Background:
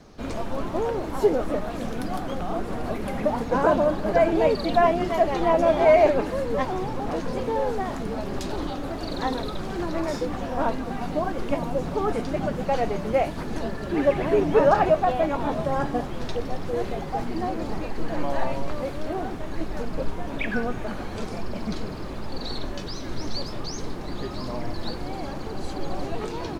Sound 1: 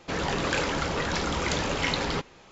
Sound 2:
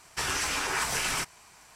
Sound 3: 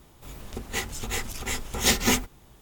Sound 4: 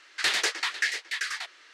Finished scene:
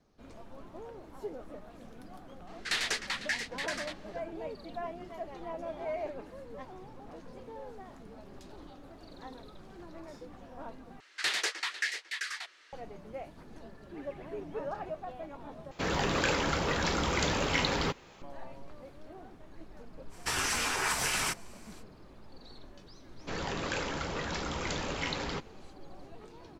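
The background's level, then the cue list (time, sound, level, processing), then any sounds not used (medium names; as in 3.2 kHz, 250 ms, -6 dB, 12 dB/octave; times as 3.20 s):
background -20 dB
2.47 s: add 4 -6 dB
11.00 s: replace with 4 -5.5 dB
15.71 s: replace with 1 -2 dB + companded quantiser 8-bit
20.09 s: add 2 -1.5 dB, fades 0.05 s
23.19 s: add 1 -7.5 dB
not used: 3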